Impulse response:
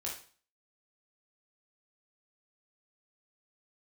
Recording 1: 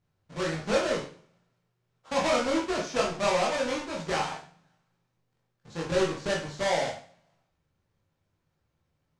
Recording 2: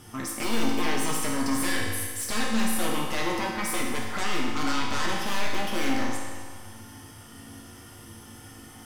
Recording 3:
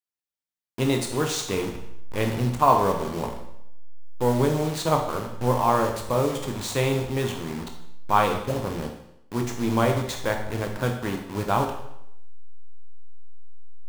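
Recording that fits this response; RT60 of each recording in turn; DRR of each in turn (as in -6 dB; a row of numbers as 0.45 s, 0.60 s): 1; 0.40 s, 1.7 s, 0.80 s; -3.5 dB, -3.5 dB, 2.5 dB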